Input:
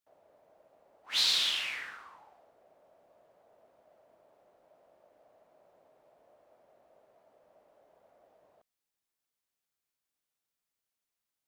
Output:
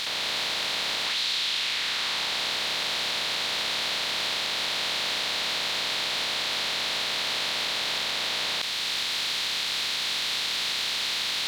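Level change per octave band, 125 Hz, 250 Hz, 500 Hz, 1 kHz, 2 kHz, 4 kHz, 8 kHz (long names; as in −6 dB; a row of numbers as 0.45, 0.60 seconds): can't be measured, +22.5 dB, +20.0 dB, +19.5 dB, +16.0 dB, +12.5 dB, +13.5 dB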